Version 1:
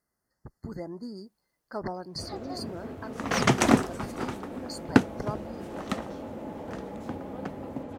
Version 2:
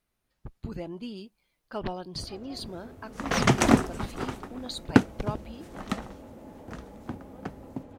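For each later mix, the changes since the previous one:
speech: remove brick-wall FIR band-stop 2100–4200 Hz; first sound -9.0 dB; master: remove HPF 110 Hz 6 dB/oct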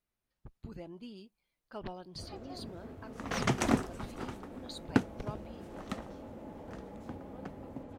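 speech -9.0 dB; second sound -8.5 dB

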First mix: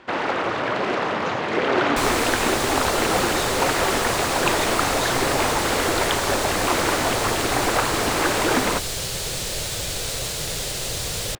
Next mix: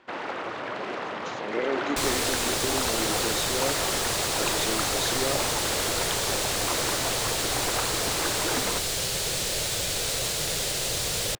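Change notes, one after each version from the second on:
first sound -9.0 dB; master: add low shelf 140 Hz -6.5 dB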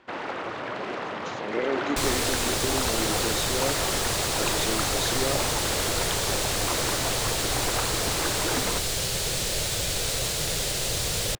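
master: add low shelf 140 Hz +6.5 dB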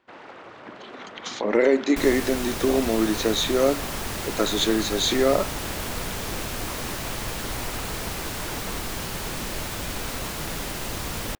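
speech +10.0 dB; first sound -10.5 dB; second sound: add graphic EQ 125/250/500/1000/4000/8000 Hz -6/+10/-8/+6/-7/-8 dB

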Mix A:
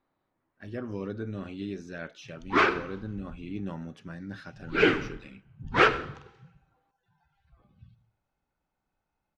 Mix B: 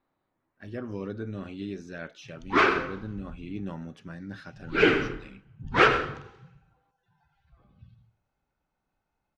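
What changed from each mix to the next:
background: send +7.5 dB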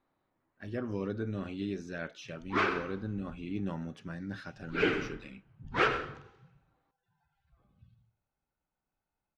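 background -8.0 dB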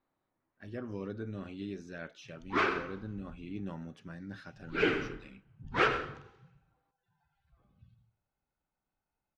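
speech -4.5 dB

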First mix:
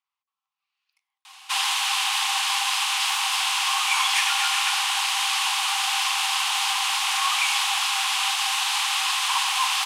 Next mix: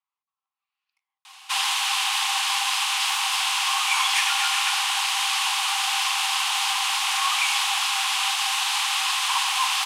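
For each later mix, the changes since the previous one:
speech: add high shelf 2200 Hz -9 dB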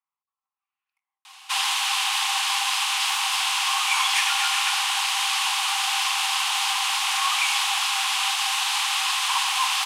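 speech: add bell 4600 Hz -12.5 dB 1.2 oct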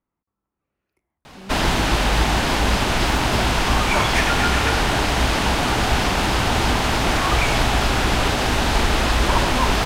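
background: add bell 9700 Hz -14 dB 1.6 oct; master: remove rippled Chebyshev high-pass 760 Hz, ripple 9 dB

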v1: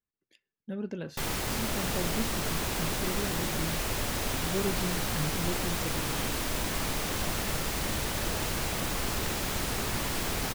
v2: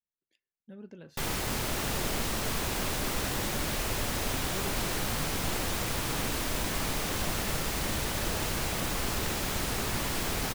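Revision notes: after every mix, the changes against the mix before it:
speech -11.0 dB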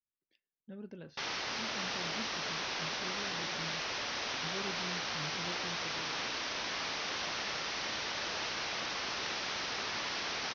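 background: add HPF 1100 Hz 6 dB/oct; master: add steep low-pass 6000 Hz 96 dB/oct

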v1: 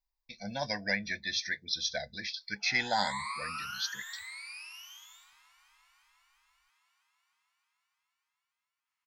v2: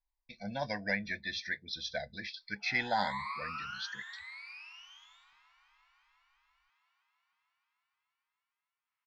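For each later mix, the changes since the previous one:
master: add air absorption 200 m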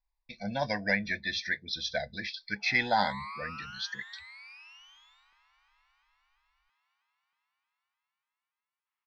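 speech +5.0 dB; reverb: off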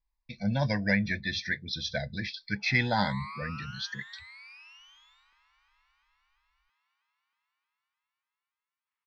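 speech: add bell 120 Hz +13.5 dB 1.6 oct; master: add bell 740 Hz -6 dB 0.33 oct

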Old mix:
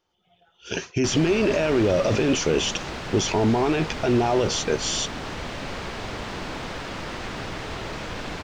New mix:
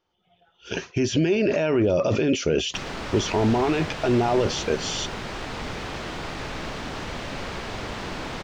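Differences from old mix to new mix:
speech: add air absorption 79 m; background: entry +1.70 s

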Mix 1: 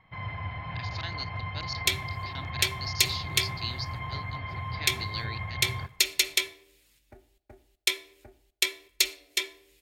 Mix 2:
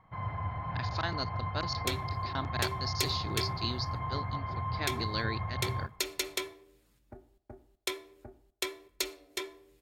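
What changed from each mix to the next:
speech +9.0 dB; second sound: add bell 180 Hz +7 dB 1.6 oct; master: add resonant high shelf 1700 Hz -9 dB, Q 1.5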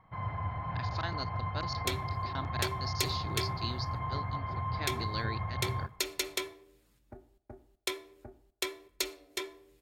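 speech -3.5 dB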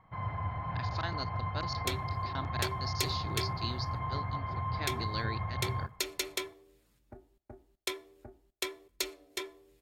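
second sound: send -9.5 dB

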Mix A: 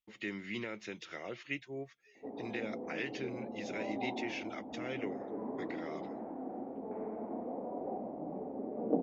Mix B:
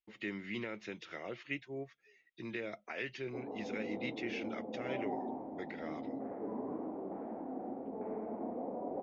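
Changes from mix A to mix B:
speech: add air absorption 90 m; background: entry +1.10 s

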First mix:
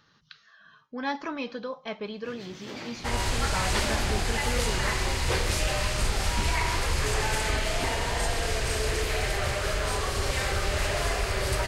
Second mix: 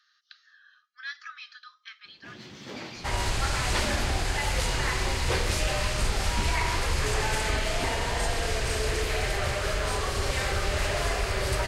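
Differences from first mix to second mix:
speech: add rippled Chebyshev high-pass 1200 Hz, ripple 6 dB; master: add high shelf 11000 Hz -4 dB

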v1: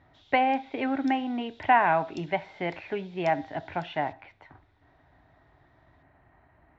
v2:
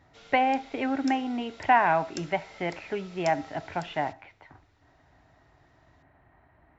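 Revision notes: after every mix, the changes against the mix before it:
background: remove ladder band-pass 3800 Hz, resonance 65%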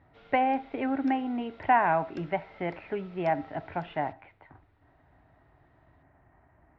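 master: add air absorption 410 m

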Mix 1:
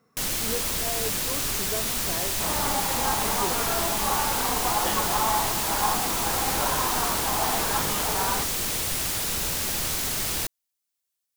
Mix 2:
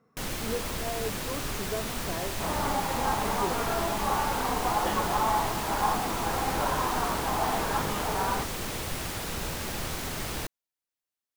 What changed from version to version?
master: add high shelf 3100 Hz -12 dB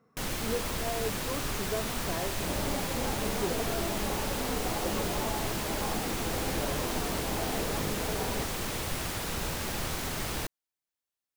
second sound: add band shelf 1800 Hz -14 dB 2.7 oct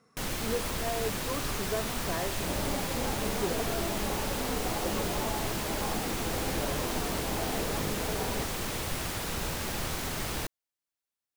speech: remove LPF 1200 Hz 6 dB/oct

